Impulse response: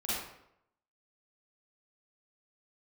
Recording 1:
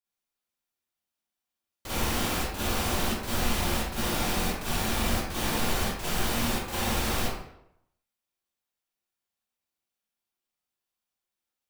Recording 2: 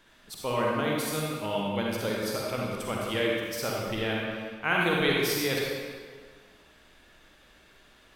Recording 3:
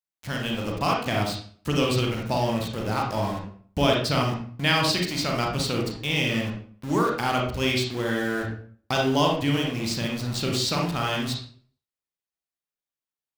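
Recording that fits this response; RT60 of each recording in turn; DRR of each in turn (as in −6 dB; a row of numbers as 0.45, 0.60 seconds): 1; 0.80, 1.7, 0.45 seconds; −10.5, −3.5, −0.5 decibels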